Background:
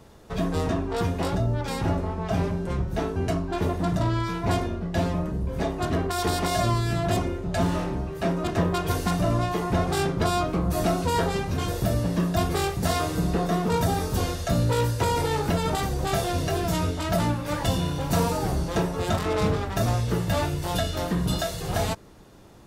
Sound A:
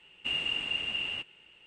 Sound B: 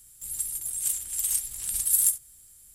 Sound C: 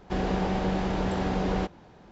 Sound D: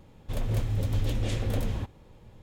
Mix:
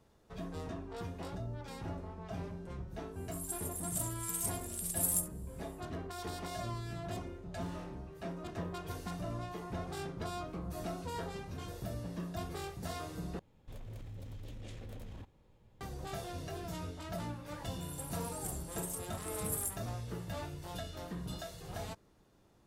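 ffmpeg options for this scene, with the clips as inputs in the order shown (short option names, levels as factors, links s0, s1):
-filter_complex "[2:a]asplit=2[s0][s1];[0:a]volume=0.15[s2];[4:a]acompressor=threshold=0.0224:ratio=4:attack=6:release=29:knee=1:detection=peak[s3];[s2]asplit=2[s4][s5];[s4]atrim=end=13.394[s6];[s3]atrim=end=2.42,asetpts=PTS-STARTPTS,volume=0.237[s7];[s5]atrim=start=15.806[s8];[s0]atrim=end=2.74,asetpts=PTS-STARTPTS,volume=0.299,afade=t=in:d=0.1,afade=t=out:st=2.64:d=0.1,adelay=3100[s9];[s1]atrim=end=2.74,asetpts=PTS-STARTPTS,volume=0.158,afade=t=in:d=0.004:c=hsin,afade=t=out:st=2.736:d=0.004:c=hsin,adelay=17590[s10];[s6][s7]acrossfade=d=0.004:c1=hsin:c2=hsin[s11];[s11][s8]acrossfade=d=0.004:c1=hsin:c2=hsin[s12];[s12][s9][s10]amix=inputs=3:normalize=0"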